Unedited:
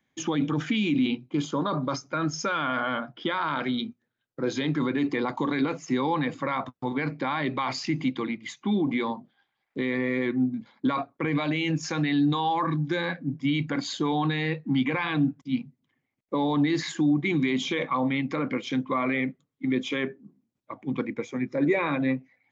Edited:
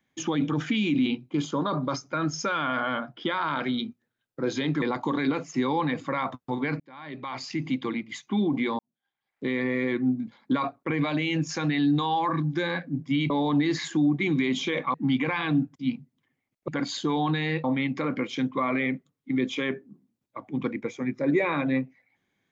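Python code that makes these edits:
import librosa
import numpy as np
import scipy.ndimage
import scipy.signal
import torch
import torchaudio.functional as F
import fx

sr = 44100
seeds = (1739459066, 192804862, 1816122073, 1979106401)

y = fx.edit(x, sr, fx.cut(start_s=4.82, length_s=0.34),
    fx.fade_in_span(start_s=7.14, length_s=1.07),
    fx.fade_in_span(start_s=9.13, length_s=0.66, curve='qua'),
    fx.swap(start_s=13.64, length_s=0.96, other_s=16.34, other_length_s=1.64), tone=tone)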